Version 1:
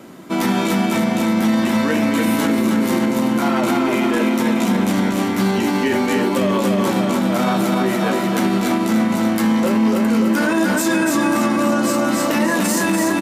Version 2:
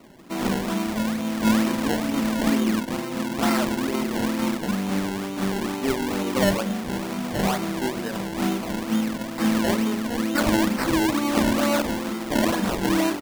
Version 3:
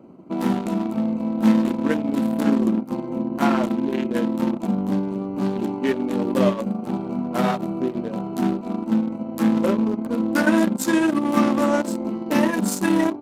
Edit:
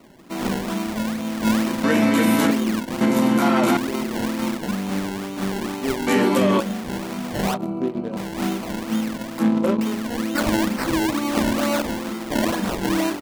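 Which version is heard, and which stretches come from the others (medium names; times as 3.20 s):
2
1.84–2.51 s: from 1
3.01–3.77 s: from 1
6.07–6.60 s: from 1
7.54–8.17 s: from 3
9.39–9.81 s: from 3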